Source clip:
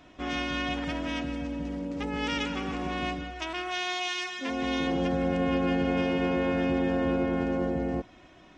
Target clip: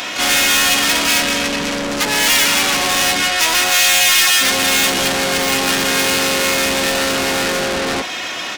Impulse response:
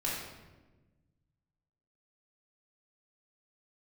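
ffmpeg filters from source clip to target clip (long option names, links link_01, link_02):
-filter_complex "[0:a]asplit=3[link_01][link_02][link_03];[link_02]asetrate=33038,aresample=44100,atempo=1.33484,volume=-4dB[link_04];[link_03]asetrate=88200,aresample=44100,atempo=0.5,volume=-16dB[link_05];[link_01][link_04][link_05]amix=inputs=3:normalize=0,asplit=2[link_06][link_07];[link_07]highpass=frequency=720:poles=1,volume=35dB,asoftclip=type=tanh:threshold=-13dB[link_08];[link_06][link_08]amix=inputs=2:normalize=0,lowpass=frequency=5100:poles=1,volume=-6dB,crystalizer=i=8:c=0,volume=-3dB"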